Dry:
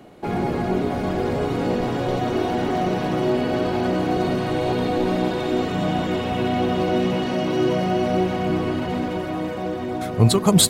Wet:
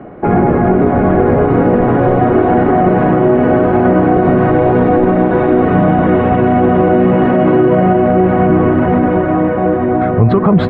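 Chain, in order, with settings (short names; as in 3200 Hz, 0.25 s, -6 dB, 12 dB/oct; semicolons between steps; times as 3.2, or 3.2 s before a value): LPF 1800 Hz 24 dB/oct; notch 910 Hz, Q 19; maximiser +15 dB; gain -1 dB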